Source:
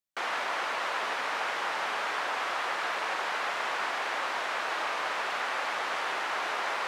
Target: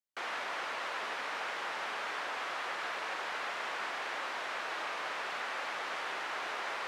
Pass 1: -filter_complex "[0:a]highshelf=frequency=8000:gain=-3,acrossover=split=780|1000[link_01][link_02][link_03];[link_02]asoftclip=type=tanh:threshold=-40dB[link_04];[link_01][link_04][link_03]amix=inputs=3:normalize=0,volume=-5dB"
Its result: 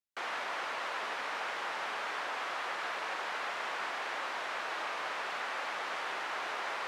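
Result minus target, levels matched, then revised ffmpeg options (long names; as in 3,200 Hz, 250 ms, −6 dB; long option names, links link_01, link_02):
soft clipping: distortion −8 dB
-filter_complex "[0:a]highshelf=frequency=8000:gain=-3,acrossover=split=780|1000[link_01][link_02][link_03];[link_02]asoftclip=type=tanh:threshold=-49dB[link_04];[link_01][link_04][link_03]amix=inputs=3:normalize=0,volume=-5dB"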